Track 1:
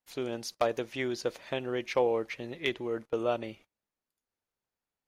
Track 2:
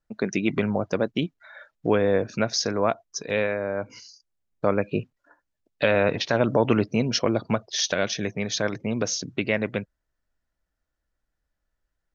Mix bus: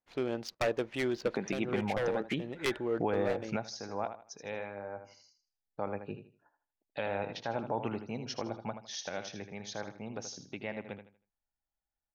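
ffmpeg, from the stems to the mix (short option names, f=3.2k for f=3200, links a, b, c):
-filter_complex "[0:a]aeval=exprs='0.0708*(abs(mod(val(0)/0.0708+3,4)-2)-1)':c=same,adynamicsmooth=sensitivity=8:basefreq=2k,volume=1dB,asplit=2[a][b];[1:a]equalizer=f=820:t=o:w=0.28:g=14,adelay=1150,volume=-6dB,asplit=2[c][d];[d]volume=-19.5dB[e];[b]apad=whole_len=586319[f];[c][f]sidechaingate=range=-10dB:threshold=-59dB:ratio=16:detection=peak[g];[e]aecho=0:1:79|158|237|316:1|0.28|0.0784|0.022[h];[a][g][h]amix=inputs=3:normalize=0,alimiter=limit=-21dB:level=0:latency=1:release=304"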